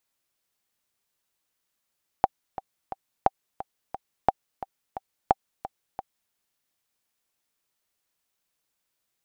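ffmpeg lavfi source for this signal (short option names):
-f lavfi -i "aevalsrc='pow(10,(-4.5-15*gte(mod(t,3*60/176),60/176))/20)*sin(2*PI*776*mod(t,60/176))*exp(-6.91*mod(t,60/176)/0.03)':d=4.09:s=44100"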